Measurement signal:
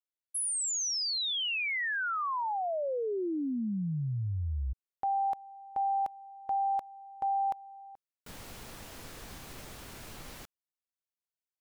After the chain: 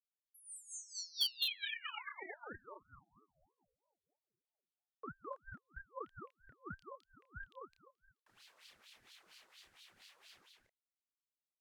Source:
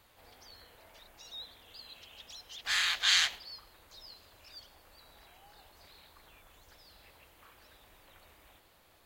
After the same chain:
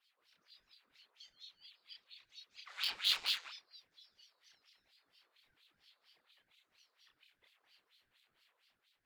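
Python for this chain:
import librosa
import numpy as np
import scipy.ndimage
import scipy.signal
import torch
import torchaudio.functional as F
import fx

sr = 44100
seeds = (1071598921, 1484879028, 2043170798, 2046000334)

p1 = np.diff(x, prepend=0.0)
p2 = fx.wah_lfo(p1, sr, hz=4.3, low_hz=720.0, high_hz=3900.0, q=7.1)
p3 = fx.quant_dither(p2, sr, seeds[0], bits=6, dither='none')
p4 = p2 + (p3 * librosa.db_to_amplitude(-10.5))
p5 = fx.doubler(p4, sr, ms=30.0, db=-3.5)
p6 = p5 + fx.echo_single(p5, sr, ms=211, db=-3.5, dry=0)
p7 = fx.ring_lfo(p6, sr, carrier_hz=520.0, swing_pct=55, hz=3.1)
y = p7 * librosa.db_to_amplitude(8.0)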